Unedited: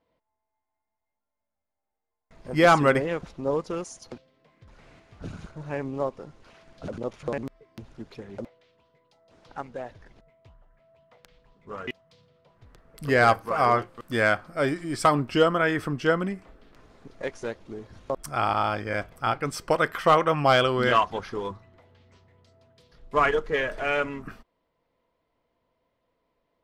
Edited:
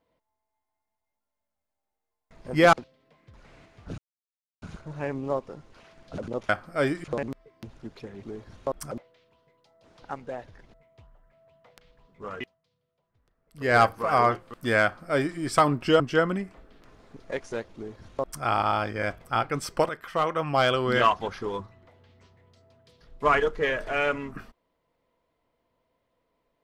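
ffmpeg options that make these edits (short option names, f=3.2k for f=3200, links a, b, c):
-filter_complex "[0:a]asplit=11[a][b][c][d][e][f][g][h][i][j][k];[a]atrim=end=2.732[l];[b]atrim=start=4.068:end=5.32,asetpts=PTS-STARTPTS,afade=t=out:st=1.248:d=0.004:c=hsin,apad=pad_dur=0.64[m];[c]atrim=start=5.32:end=7.192,asetpts=PTS-STARTPTS,afade=t=in:d=0.004:c=hsin[n];[d]atrim=start=14.298:end=14.852[o];[e]atrim=start=7.188:end=8.382[p];[f]atrim=start=17.658:end=18.342[q];[g]atrim=start=8.378:end=12.14,asetpts=PTS-STARTPTS,afade=t=out:st=3.462:d=0.3:c=qua:silence=0.141254[r];[h]atrim=start=12.14:end=12.93,asetpts=PTS-STARTPTS,volume=-17dB[s];[i]atrim=start=12.93:end=15.472,asetpts=PTS-STARTPTS,afade=t=in:d=0.3:c=qua:silence=0.141254[t];[j]atrim=start=15.908:end=19.8,asetpts=PTS-STARTPTS,afade=t=out:st=3.888:d=0.004:c=hsin:silence=0.251189[u];[k]atrim=start=19.8,asetpts=PTS-STARTPTS,afade=t=in:d=1.17:silence=0.251189[v];[m][n]concat=n=2:v=0:a=1[w];[l][w]acrossfade=d=0.004:c1=hsin:c2=hsin[x];[x][o]acrossfade=d=0.004:c1=hsin:c2=hsin[y];[y][p]acrossfade=d=0.004:c1=hsin:c2=hsin[z];[z][q]acrossfade=d=0.004:c1=hsin:c2=hsin[aa];[r][s][t]concat=n=3:v=0:a=1[ab];[aa][ab]acrossfade=d=0.004:c1=hsin:c2=hsin[ac];[u][v]concat=n=2:v=0:a=1[ad];[ac][ad]acrossfade=d=0.004:c1=hsin:c2=hsin"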